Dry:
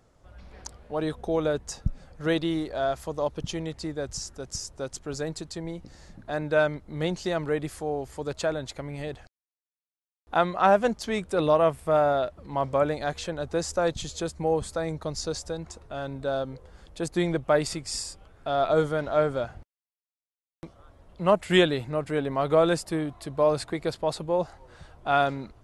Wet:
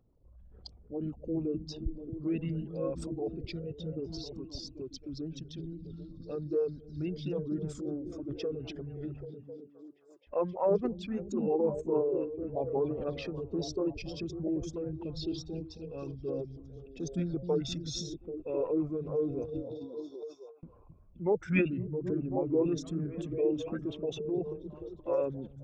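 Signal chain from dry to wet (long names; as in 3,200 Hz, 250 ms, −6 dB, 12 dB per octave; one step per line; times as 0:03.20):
spectral envelope exaggerated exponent 2
echo through a band-pass that steps 262 ms, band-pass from 160 Hz, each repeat 0.7 octaves, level −2 dB
formants moved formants −5 semitones
level −7 dB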